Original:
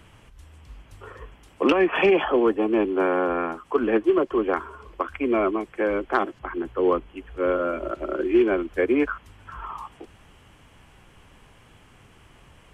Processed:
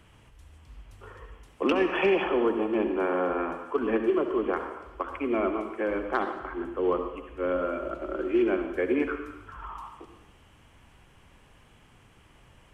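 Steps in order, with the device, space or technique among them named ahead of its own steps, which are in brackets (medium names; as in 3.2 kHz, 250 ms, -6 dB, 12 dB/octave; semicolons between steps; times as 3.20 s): bathroom (reverberation RT60 0.90 s, pre-delay 61 ms, DRR 6 dB); trim -5.5 dB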